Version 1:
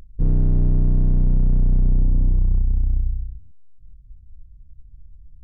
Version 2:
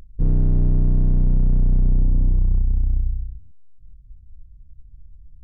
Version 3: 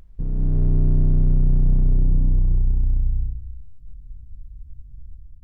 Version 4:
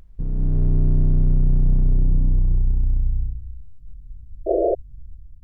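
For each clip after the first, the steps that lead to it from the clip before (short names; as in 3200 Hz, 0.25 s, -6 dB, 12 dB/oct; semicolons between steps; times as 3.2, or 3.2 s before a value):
nothing audible
compressor, threshold -20 dBFS, peak gain reduction 6.5 dB; non-linear reverb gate 0.34 s flat, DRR 6 dB; AGC gain up to 8 dB; gain -3.5 dB
painted sound noise, 4.46–4.75, 330–700 Hz -19 dBFS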